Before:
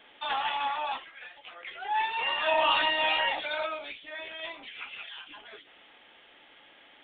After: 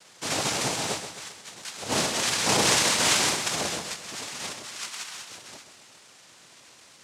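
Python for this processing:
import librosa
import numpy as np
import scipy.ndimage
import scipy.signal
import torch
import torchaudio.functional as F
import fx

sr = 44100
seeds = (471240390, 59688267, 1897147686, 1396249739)

y = fx.peak_eq(x, sr, hz=2400.0, db=7.0, octaves=0.27)
y = fx.noise_vocoder(y, sr, seeds[0], bands=2)
y = fx.echo_feedback(y, sr, ms=131, feedback_pct=49, wet_db=-9.5)
y = y * 10.0 ** (1.5 / 20.0)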